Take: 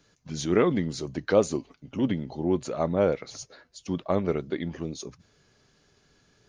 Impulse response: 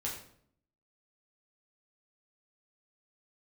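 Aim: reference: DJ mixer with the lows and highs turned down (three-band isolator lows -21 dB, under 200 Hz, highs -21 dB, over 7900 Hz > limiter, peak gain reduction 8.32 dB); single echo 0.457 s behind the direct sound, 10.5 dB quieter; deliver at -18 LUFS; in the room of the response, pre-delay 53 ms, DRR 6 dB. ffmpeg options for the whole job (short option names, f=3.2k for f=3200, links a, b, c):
-filter_complex "[0:a]aecho=1:1:457:0.299,asplit=2[a][b];[1:a]atrim=start_sample=2205,adelay=53[c];[b][c]afir=irnorm=-1:irlink=0,volume=-8dB[d];[a][d]amix=inputs=2:normalize=0,acrossover=split=200 7900:gain=0.0891 1 0.0891[e][f][g];[e][f][g]amix=inputs=3:normalize=0,volume=12.5dB,alimiter=limit=-5dB:level=0:latency=1"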